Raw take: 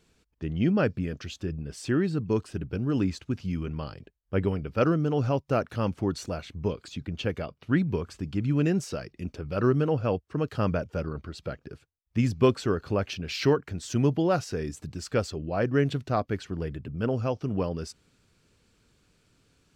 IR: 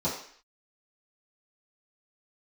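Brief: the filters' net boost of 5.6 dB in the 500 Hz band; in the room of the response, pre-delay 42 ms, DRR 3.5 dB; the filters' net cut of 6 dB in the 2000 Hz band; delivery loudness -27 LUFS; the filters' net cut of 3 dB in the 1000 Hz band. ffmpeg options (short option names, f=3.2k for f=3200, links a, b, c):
-filter_complex "[0:a]equalizer=f=500:t=o:g=8.5,equalizer=f=1k:t=o:g=-6.5,equalizer=f=2k:t=o:g=-6.5,asplit=2[a][b];[1:a]atrim=start_sample=2205,adelay=42[c];[b][c]afir=irnorm=-1:irlink=0,volume=-12.5dB[d];[a][d]amix=inputs=2:normalize=0,volume=-5dB"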